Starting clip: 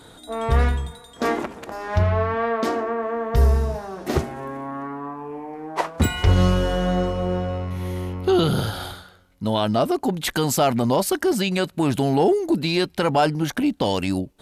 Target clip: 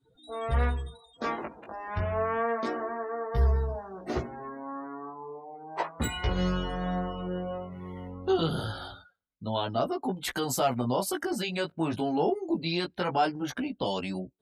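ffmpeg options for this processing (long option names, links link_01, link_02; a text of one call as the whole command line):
ffmpeg -i in.wav -filter_complex "[0:a]flanger=delay=15.5:depth=3.1:speed=0.29,acrossover=split=460[link_01][link_02];[link_02]dynaudnorm=framelen=120:gausssize=3:maxgain=3dB[link_03];[link_01][link_03]amix=inputs=2:normalize=0,afftdn=noise_reduction=27:noise_floor=-39,volume=-7dB" out.wav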